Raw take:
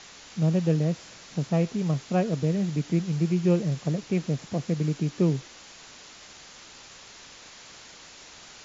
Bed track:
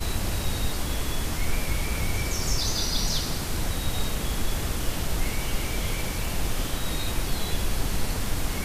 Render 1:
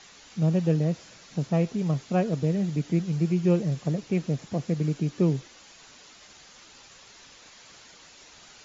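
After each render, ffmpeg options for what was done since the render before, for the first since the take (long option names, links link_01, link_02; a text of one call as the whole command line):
ffmpeg -i in.wav -af "afftdn=noise_reduction=6:noise_floor=-48" out.wav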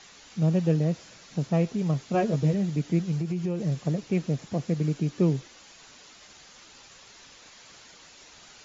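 ffmpeg -i in.wav -filter_complex "[0:a]asettb=1/sr,asplit=3[link_01][link_02][link_03];[link_01]atrim=end=2.134[link_04];[link_02]atrim=start=2.13:end=2.54,asetpts=PTS-STARTPTS,afade=type=in:duration=0.004:curve=qsin,afade=type=out:start_time=0.406:duration=0.004:curve=qsin,asplit=2[link_05][link_06];[link_06]adelay=14,volume=-3.5dB[link_07];[link_05][link_07]amix=inputs=2:normalize=0,atrim=end_sample=18081[link_08];[link_03]atrim=start=2.536[link_09];[link_04][link_08]acrossfade=duration=0.004:curve1=hsin:curve2=qsin[link_10];[link_10][link_09]acrossfade=duration=0.004:curve1=qsin:curve2=hsin,asettb=1/sr,asplit=3[link_11][link_12][link_13];[link_11]atrim=end=3.174[link_14];[link_12]atrim=start=3.17:end=3.61,asetpts=PTS-STARTPTS,afade=type=in:duration=0.004:curve=qsin,afade=type=out:start_time=0.436:duration=0.004:curve=qsin,acompressor=threshold=-25dB:ratio=5:attack=3.2:release=140:knee=1:detection=peak[link_15];[link_13]atrim=start=3.606[link_16];[link_14][link_15]acrossfade=duration=0.004:curve1=hsin:curve2=qsin[link_17];[link_17][link_16]acrossfade=duration=0.004:curve1=qsin:curve2=hsin" out.wav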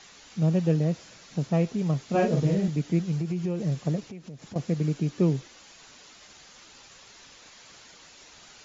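ffmpeg -i in.wav -filter_complex "[0:a]asettb=1/sr,asplit=3[link_01][link_02][link_03];[link_01]atrim=end=2.054[link_04];[link_02]atrim=start=2.05:end=2.68,asetpts=PTS-STARTPTS,afade=type=in:duration=0.004:curve=qsin,afade=type=out:start_time=0.626:duration=0.004:curve=qsin,asplit=2[link_05][link_06];[link_06]adelay=42,volume=-3dB[link_07];[link_05][link_07]amix=inputs=2:normalize=0,atrim=end_sample=27783[link_08];[link_03]atrim=start=2.676[link_09];[link_04][link_08]acrossfade=duration=0.004:curve1=hsin:curve2=qsin[link_10];[link_10][link_09]acrossfade=duration=0.004:curve1=qsin:curve2=hsin,asettb=1/sr,asplit=3[link_11][link_12][link_13];[link_11]atrim=end=4.004[link_14];[link_12]atrim=start=4:end=4.56,asetpts=PTS-STARTPTS,afade=type=in:duration=0.004:curve=qsin,afade=type=out:start_time=0.556:duration=0.004:curve=qsin,acompressor=threshold=-39dB:ratio=5:attack=3.2:release=140:knee=1:detection=peak[link_15];[link_13]atrim=start=4.556[link_16];[link_14][link_15]acrossfade=duration=0.004:curve1=hsin:curve2=qsin[link_17];[link_17][link_16]acrossfade=duration=0.004:curve1=qsin:curve2=hsin" out.wav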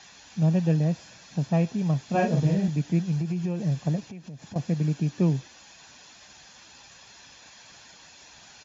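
ffmpeg -i in.wav -af "highpass=50,aecho=1:1:1.2:0.4" out.wav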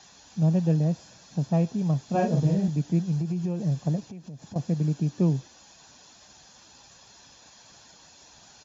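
ffmpeg -i in.wav -af "equalizer=frequency=2200:width=1.1:gain=-8.5" out.wav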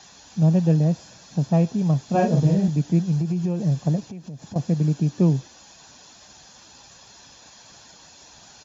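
ffmpeg -i in.wav -af "volume=4.5dB" out.wav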